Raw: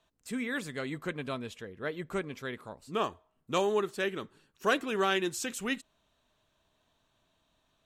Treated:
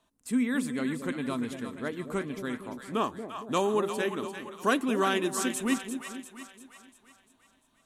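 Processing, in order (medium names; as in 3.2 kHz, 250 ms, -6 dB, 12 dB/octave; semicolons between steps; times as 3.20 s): fifteen-band graphic EQ 250 Hz +11 dB, 1 kHz +5 dB, 10 kHz +11 dB; on a send: two-band feedback delay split 670 Hz, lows 231 ms, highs 346 ms, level -8.5 dB; on the sum: trim -1.5 dB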